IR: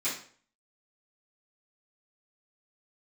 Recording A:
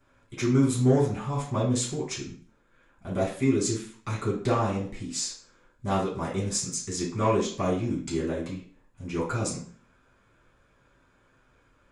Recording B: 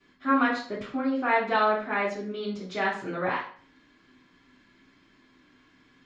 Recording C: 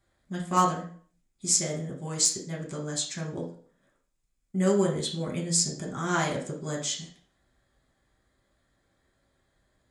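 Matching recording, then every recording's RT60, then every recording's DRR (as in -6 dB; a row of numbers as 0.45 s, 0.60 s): B; 0.50 s, 0.50 s, 0.50 s; -9.5 dB, -14.5 dB, -3.0 dB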